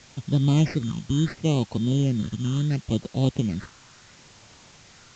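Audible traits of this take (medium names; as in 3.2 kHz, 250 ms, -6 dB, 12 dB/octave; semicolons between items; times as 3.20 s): aliases and images of a low sample rate 3.4 kHz, jitter 0%; phasing stages 8, 0.72 Hz, lowest notch 610–2100 Hz; a quantiser's noise floor 8-bit, dither triangular; A-law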